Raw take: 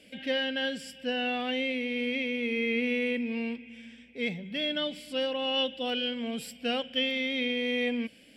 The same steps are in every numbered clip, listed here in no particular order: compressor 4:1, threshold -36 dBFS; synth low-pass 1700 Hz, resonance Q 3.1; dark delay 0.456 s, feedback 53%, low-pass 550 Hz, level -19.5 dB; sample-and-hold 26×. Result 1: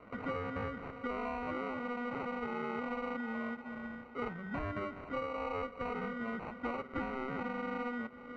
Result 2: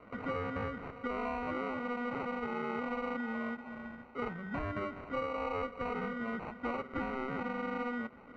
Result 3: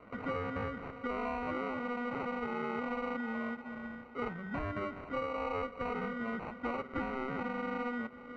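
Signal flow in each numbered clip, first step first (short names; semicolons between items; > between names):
dark delay > sample-and-hold > synth low-pass > compressor; compressor > dark delay > sample-and-hold > synth low-pass; dark delay > sample-and-hold > compressor > synth low-pass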